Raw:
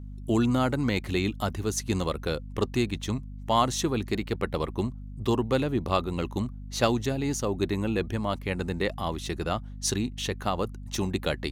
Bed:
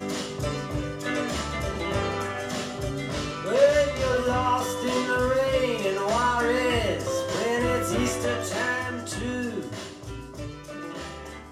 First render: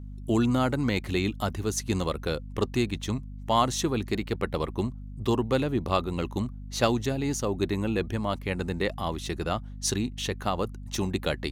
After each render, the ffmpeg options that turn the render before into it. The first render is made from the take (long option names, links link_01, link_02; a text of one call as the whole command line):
ffmpeg -i in.wav -af anull out.wav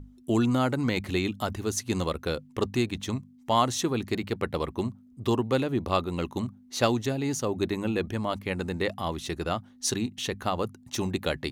ffmpeg -i in.wav -af "bandreject=frequency=50:width_type=h:width=6,bandreject=frequency=100:width_type=h:width=6,bandreject=frequency=150:width_type=h:width=6,bandreject=frequency=200:width_type=h:width=6" out.wav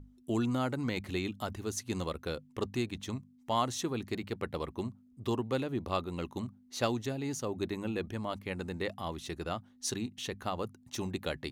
ffmpeg -i in.wav -af "volume=-7dB" out.wav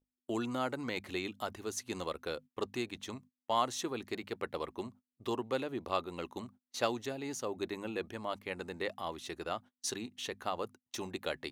ffmpeg -i in.wav -af "agate=range=-29dB:threshold=-47dB:ratio=16:detection=peak,bass=frequency=250:gain=-12,treble=frequency=4000:gain=-2" out.wav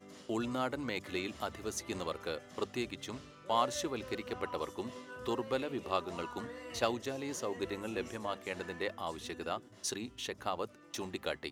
ffmpeg -i in.wav -i bed.wav -filter_complex "[1:a]volume=-23dB[link_01];[0:a][link_01]amix=inputs=2:normalize=0" out.wav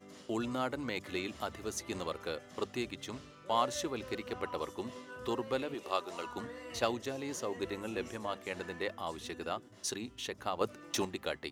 ffmpeg -i in.wav -filter_complex "[0:a]asettb=1/sr,asplit=3[link_01][link_02][link_03];[link_01]atrim=end=5.744[link_04];[link_02]atrim=start=5.74:end=6.26,asetpts=PTS-STARTPTS,afade=type=in:duration=0.004:curve=qsin,afade=type=out:start_time=0.516:duration=0.004:curve=qsin,bass=frequency=250:gain=-14,treble=frequency=4000:gain=4[link_05];[link_03]atrim=start=6.256[link_06];[link_04][link_05]acrossfade=duration=0.004:curve1=hsin:curve2=qsin[link_07];[link_07][link_06]acrossfade=duration=0.004:curve1=qsin:curve2=hsin,asplit=3[link_08][link_09][link_10];[link_08]atrim=end=10.612[link_11];[link_09]atrim=start=10.608:end=11.052,asetpts=PTS-STARTPTS,volume=7dB[link_12];[link_10]atrim=start=11.048[link_13];[link_11][link_12]acrossfade=duration=0.004:curve1=hsin:curve2=hsin[link_14];[link_14][link_13]acrossfade=duration=0.004:curve1=hsin:curve2=hsin" out.wav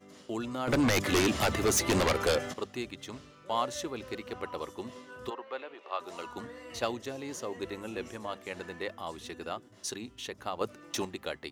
ffmpeg -i in.wav -filter_complex "[0:a]asplit=3[link_01][link_02][link_03];[link_01]afade=type=out:start_time=0.67:duration=0.02[link_04];[link_02]aeval=exprs='0.0891*sin(PI/2*4.47*val(0)/0.0891)':channel_layout=same,afade=type=in:start_time=0.67:duration=0.02,afade=type=out:start_time=2.52:duration=0.02[link_05];[link_03]afade=type=in:start_time=2.52:duration=0.02[link_06];[link_04][link_05][link_06]amix=inputs=3:normalize=0,asplit=3[link_07][link_08][link_09];[link_07]afade=type=out:start_time=5.29:duration=0.02[link_10];[link_08]highpass=610,lowpass=2600,afade=type=in:start_time=5.29:duration=0.02,afade=type=out:start_time=5.99:duration=0.02[link_11];[link_09]afade=type=in:start_time=5.99:duration=0.02[link_12];[link_10][link_11][link_12]amix=inputs=3:normalize=0" out.wav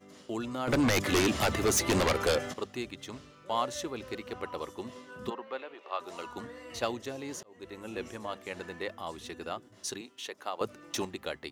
ffmpeg -i in.wav -filter_complex "[0:a]asettb=1/sr,asplit=3[link_01][link_02][link_03];[link_01]atrim=end=5.154[link_04];[link_02]atrim=start=5.15:end=5.58,asetpts=PTS-STARTPTS,afade=type=in:duration=0.004:curve=qsin,afade=type=out:start_time=0.426:duration=0.004:curve=qsin,equalizer=frequency=190:width_type=o:width=0.56:gain=15[link_05];[link_03]atrim=start=5.576[link_06];[link_04][link_05]acrossfade=duration=0.004:curve1=hsin:curve2=qsin[link_07];[link_07][link_06]acrossfade=duration=0.004:curve1=qsin:curve2=hsin,asettb=1/sr,asplit=3[link_08][link_09][link_10];[link_08]atrim=end=10.014[link_11];[link_09]atrim=start=10.01:end=10.61,asetpts=PTS-STARTPTS,afade=type=in:duration=0.004:curve=qsin,afade=type=out:start_time=0.596:duration=0.004:curve=qsin,highpass=370[link_12];[link_10]atrim=start=10.606[link_13];[link_11][link_12]acrossfade=duration=0.004:curve1=hsin:curve2=qsin[link_14];[link_14][link_13]acrossfade=duration=0.004:curve1=qsin:curve2=hsin,asplit=2[link_15][link_16];[link_15]atrim=end=7.43,asetpts=PTS-STARTPTS,afade=type=out:start_time=7.426:duration=0.004:curve=hsin[link_17];[link_16]atrim=start=7.43,asetpts=PTS-STARTPTS,afade=type=in:duration=0.55[link_18];[link_17][link_18]concat=n=2:v=0:a=1" out.wav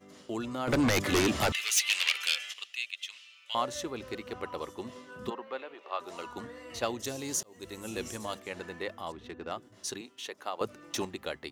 ffmpeg -i in.wav -filter_complex "[0:a]asettb=1/sr,asplit=3[link_01][link_02][link_03];[link_01]atrim=end=1.524[link_04];[link_02]atrim=start=1.52:end=3.55,asetpts=PTS-STARTPTS,afade=type=in:duration=0.004:curve=qsin,afade=type=out:start_time=2.026:duration=0.004:curve=qsin,highpass=frequency=2700:width_type=q:width=3.7[link_05];[link_03]atrim=start=3.546[link_06];[link_04][link_05]acrossfade=duration=0.004:curve1=hsin:curve2=qsin[link_07];[link_07][link_06]acrossfade=duration=0.004:curve1=qsin:curve2=hsin,asettb=1/sr,asplit=3[link_08][link_09][link_10];[link_08]atrim=end=6.994[link_11];[link_09]atrim=start=6.99:end=8.4,asetpts=PTS-STARTPTS,afade=type=in:duration=0.004:curve=qsin,afade=type=out:start_time=1.406:duration=0.004:curve=qsin,bass=frequency=250:gain=4,treble=frequency=4000:gain=14[link_12];[link_10]atrim=start=8.396[link_13];[link_11][link_12]acrossfade=duration=0.004:curve1=hsin:curve2=qsin[link_14];[link_14][link_13]acrossfade=duration=0.004:curve1=qsin:curve2=hsin,asettb=1/sr,asplit=3[link_15][link_16][link_17];[link_15]atrim=end=9.124[link_18];[link_16]atrim=start=9.12:end=9.52,asetpts=PTS-STARTPTS,afade=type=in:duration=0.004:curve=qsin,afade=type=out:start_time=0.396:duration=0.004:curve=qsin,adynamicsmooth=sensitivity=6:basefreq=2000[link_19];[link_17]atrim=start=9.516[link_20];[link_18][link_19]acrossfade=duration=0.004:curve1=hsin:curve2=qsin[link_21];[link_21][link_20]acrossfade=duration=0.004:curve1=qsin:curve2=hsin" out.wav